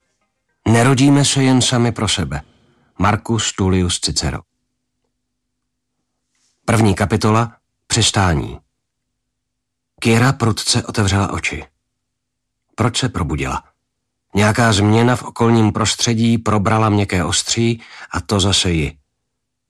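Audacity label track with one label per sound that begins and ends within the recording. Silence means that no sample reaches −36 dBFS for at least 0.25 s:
0.660000	2.420000	sound
2.990000	4.410000	sound
6.680000	7.520000	sound
7.900000	8.570000	sound
10.020000	11.650000	sound
12.780000	13.600000	sound
14.340000	18.920000	sound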